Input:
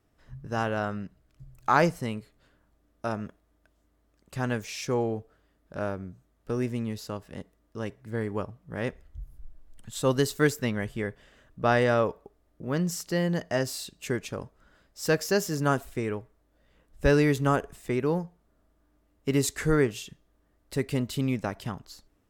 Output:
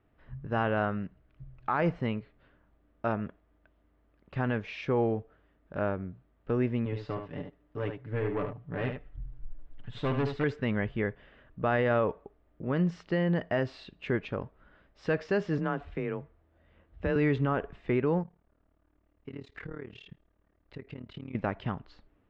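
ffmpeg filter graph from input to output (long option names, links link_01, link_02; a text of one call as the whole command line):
ffmpeg -i in.wav -filter_complex "[0:a]asettb=1/sr,asplit=3[link_01][link_02][link_03];[link_01]atrim=end=6.854[link_04];[link_02]atrim=start=6.85:end=10.44,asetpts=PTS-STARTPTS,afade=type=in:duration=0.004:curve=qsin,afade=type=out:start_time=3.586:duration=0.004:curve=qsin,aecho=1:1:6.9:0.74,atrim=end_sample=158319,aeval=exprs='(tanh(22.4*val(0)+0.35)-tanh(0.35))/22.4':channel_layout=same,aecho=1:1:73:0.447,atrim=end_sample=158319[link_05];[link_03]atrim=start=10.436[link_06];[link_04][link_05]acrossfade=duration=0.004:curve1=hsin:curve2=qsin[link_07];[link_07][link_06]acrossfade=duration=0.004:curve1=qsin:curve2=hsin,asettb=1/sr,asplit=3[link_08][link_09][link_10];[link_08]atrim=end=15.584[link_11];[link_09]atrim=start=15.58:end=17.16,asetpts=PTS-STARTPTS,afade=type=in:duration=0.004:curve=qsin,afade=type=out:start_time=1.576:duration=0.004:curve=qsin,afreqshift=26,acompressor=threshold=-32dB:ratio=2:attack=3.2:release=140:knee=1:detection=peak[link_12];[link_10]atrim=start=17.156[link_13];[link_11][link_12]acrossfade=duration=0.004:curve1=hsin:curve2=qsin[link_14];[link_14][link_13]acrossfade=duration=0.004:curve1=qsin:curve2=hsin,asettb=1/sr,asplit=3[link_15][link_16][link_17];[link_15]atrim=end=18.234[link_18];[link_16]atrim=start=18.23:end=21.35,asetpts=PTS-STARTPTS,afade=type=in:duration=0.004:curve=qsin,afade=type=out:start_time=3.116:duration=0.004:curve=qsin,acompressor=threshold=-38dB:ratio=4:attack=3.2:release=140:knee=1:detection=peak,tremolo=f=37:d=0.889[link_19];[link_17]atrim=start=21.346[link_20];[link_18][link_19]acrossfade=duration=0.004:curve1=hsin:curve2=qsin[link_21];[link_21][link_20]acrossfade=duration=0.004:curve1=qsin:curve2=hsin,lowpass=frequency=3000:width=0.5412,lowpass=frequency=3000:width=1.3066,alimiter=limit=-18.5dB:level=0:latency=1:release=39,volume=1dB" out.wav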